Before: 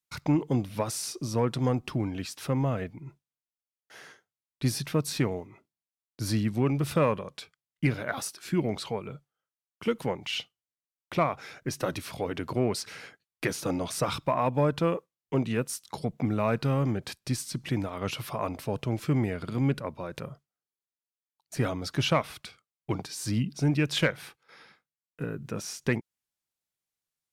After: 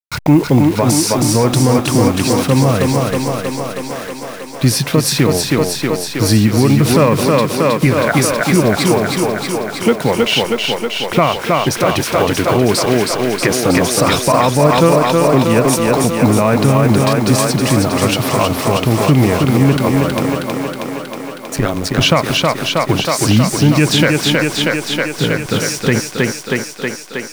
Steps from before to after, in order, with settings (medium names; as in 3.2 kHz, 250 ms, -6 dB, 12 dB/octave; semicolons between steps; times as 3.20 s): send-on-delta sampling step -43.5 dBFS; 21.56–22.01 s: AM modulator 98 Hz, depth 85%; thinning echo 318 ms, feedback 76%, high-pass 150 Hz, level -3.5 dB; loudness maximiser +18 dB; trim -1 dB